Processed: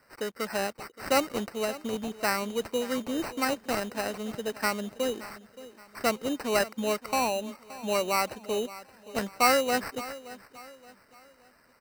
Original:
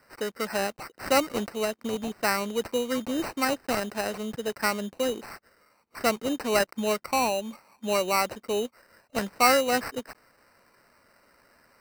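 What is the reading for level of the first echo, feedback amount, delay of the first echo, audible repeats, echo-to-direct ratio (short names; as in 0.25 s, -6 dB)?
-17.0 dB, 38%, 0.573 s, 3, -16.5 dB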